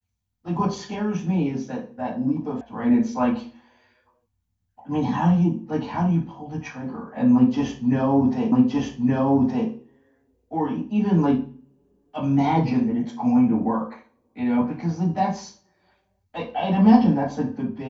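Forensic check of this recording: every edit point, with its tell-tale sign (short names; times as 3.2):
2.61 sound cut off
8.52 repeat of the last 1.17 s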